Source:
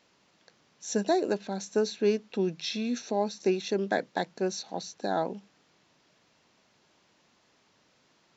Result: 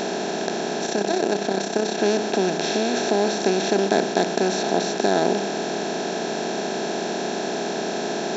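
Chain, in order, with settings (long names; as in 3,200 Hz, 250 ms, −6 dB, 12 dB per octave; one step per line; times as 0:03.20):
compressor on every frequency bin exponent 0.2
0:00.86–0:01.99: amplitude modulation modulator 32 Hz, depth 40%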